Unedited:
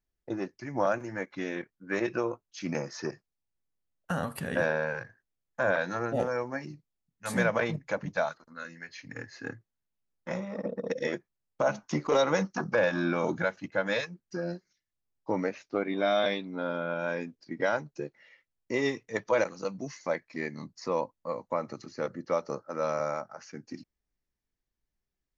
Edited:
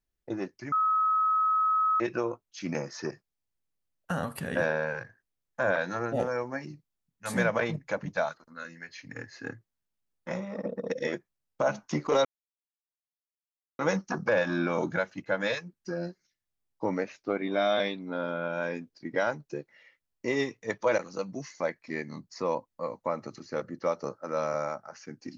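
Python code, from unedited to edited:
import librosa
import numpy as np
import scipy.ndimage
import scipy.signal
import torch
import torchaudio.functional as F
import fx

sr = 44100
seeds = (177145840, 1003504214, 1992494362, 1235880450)

y = fx.edit(x, sr, fx.bleep(start_s=0.72, length_s=1.28, hz=1280.0, db=-22.0),
    fx.insert_silence(at_s=12.25, length_s=1.54), tone=tone)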